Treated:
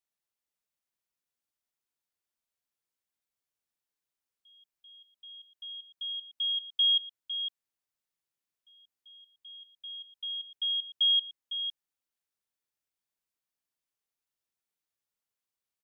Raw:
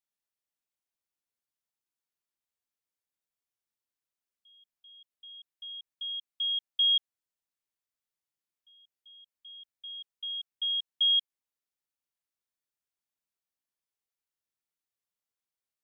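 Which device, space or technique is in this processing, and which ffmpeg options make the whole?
ducked delay: -filter_complex "[0:a]asplit=3[s0][s1][s2];[s1]adelay=505,volume=0.422[s3];[s2]apad=whole_len=720698[s4];[s3][s4]sidechaincompress=threshold=0.0398:ratio=8:attack=16:release=1430[s5];[s0][s5]amix=inputs=2:normalize=0"

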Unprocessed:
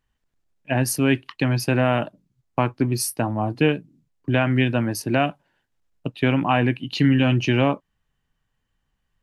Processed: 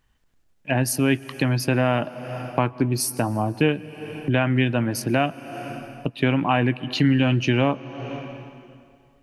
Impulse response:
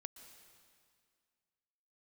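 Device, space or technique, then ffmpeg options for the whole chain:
ducked reverb: -filter_complex "[0:a]asplit=3[s0][s1][s2];[1:a]atrim=start_sample=2205[s3];[s1][s3]afir=irnorm=-1:irlink=0[s4];[s2]apad=whole_len=406753[s5];[s4][s5]sidechaincompress=threshold=0.0126:ratio=12:attack=45:release=284,volume=4.47[s6];[s0][s6]amix=inputs=2:normalize=0,volume=0.75"

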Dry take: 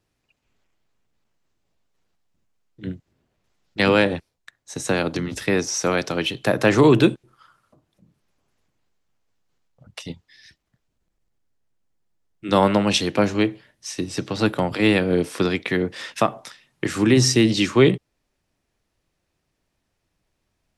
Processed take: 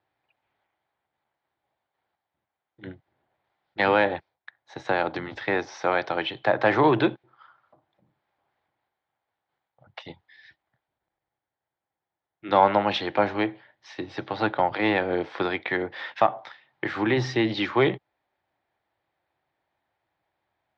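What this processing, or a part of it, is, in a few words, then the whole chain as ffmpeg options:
overdrive pedal into a guitar cabinet: -filter_complex "[0:a]asplit=2[s0][s1];[s1]highpass=f=720:p=1,volume=3.16,asoftclip=type=tanh:threshold=0.708[s2];[s0][s2]amix=inputs=2:normalize=0,lowpass=f=2700:p=1,volume=0.501,highpass=91,equalizer=f=180:t=q:w=4:g=-8,equalizer=f=250:t=q:w=4:g=-7,equalizer=f=440:t=q:w=4:g=-5,equalizer=f=810:t=q:w=4:g=7,equalizer=f=1200:t=q:w=4:g=-3,equalizer=f=2700:t=q:w=4:g=-8,lowpass=f=3600:w=0.5412,lowpass=f=3600:w=1.3066,volume=0.75"

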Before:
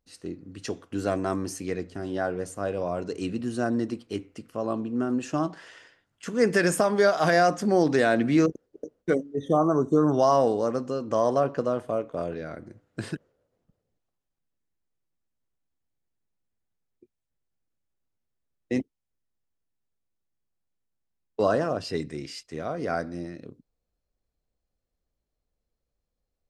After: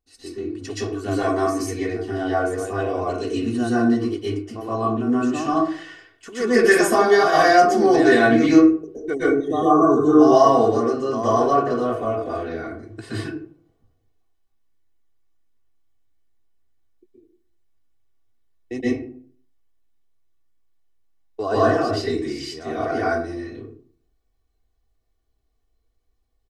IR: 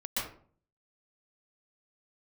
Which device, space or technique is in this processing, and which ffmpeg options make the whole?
microphone above a desk: -filter_complex "[0:a]aecho=1:1:2.7:0.82[s0];[1:a]atrim=start_sample=2205[s1];[s0][s1]afir=irnorm=-1:irlink=0"

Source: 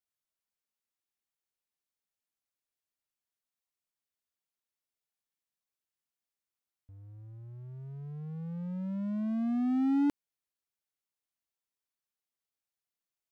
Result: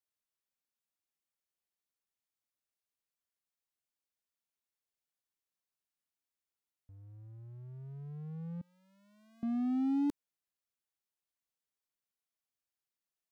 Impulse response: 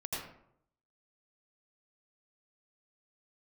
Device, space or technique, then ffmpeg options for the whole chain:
one-band saturation: -filter_complex "[0:a]asettb=1/sr,asplit=3[s0][s1][s2];[s0]atrim=end=8.614[s3];[s1]atrim=start=8.61:end=9.43,asetpts=PTS-STARTPTS,afade=t=in:d=0.004:c=qsin,afade=t=out:st=0.816:d=0.004:c=qsin,aderivative[s4];[s2]atrim=start=9.426[s5];[s3][s4]acrossfade=d=0.004:c1=hsin:c2=qsin[s6];[s6][s5]acrossfade=d=0.004:c1=qsin:c2=hsin,acrossover=split=300|2700[s7][s8][s9];[s8]asoftclip=type=tanh:threshold=0.0237[s10];[s7][s10][s9]amix=inputs=3:normalize=0,volume=0.708"

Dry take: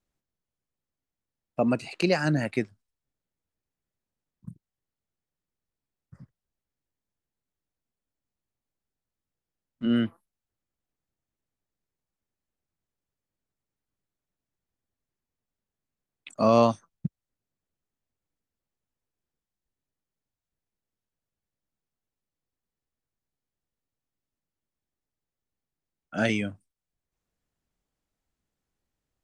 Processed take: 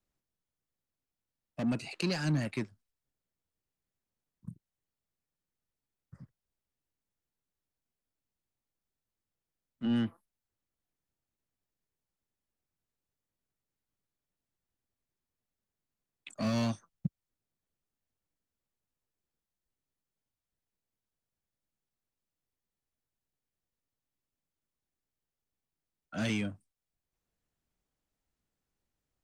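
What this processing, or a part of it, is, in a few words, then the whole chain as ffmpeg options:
one-band saturation: -filter_complex "[0:a]acrossover=split=240|2800[s0][s1][s2];[s1]asoftclip=type=tanh:threshold=0.0188[s3];[s0][s3][s2]amix=inputs=3:normalize=0,volume=0.75"

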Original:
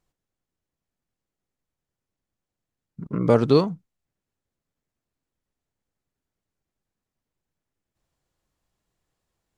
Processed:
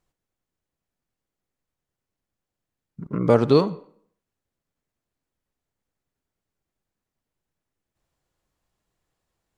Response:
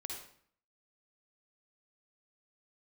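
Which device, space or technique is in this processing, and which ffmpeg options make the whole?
filtered reverb send: -filter_complex "[0:a]asplit=2[s0][s1];[s1]highpass=290,lowpass=3600[s2];[1:a]atrim=start_sample=2205[s3];[s2][s3]afir=irnorm=-1:irlink=0,volume=0.282[s4];[s0][s4]amix=inputs=2:normalize=0"

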